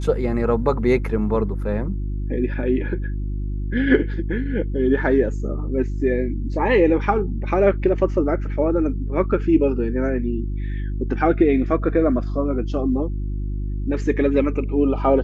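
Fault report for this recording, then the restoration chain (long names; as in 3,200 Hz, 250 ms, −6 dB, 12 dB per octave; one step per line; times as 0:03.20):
mains hum 50 Hz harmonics 7 −25 dBFS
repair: hum removal 50 Hz, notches 7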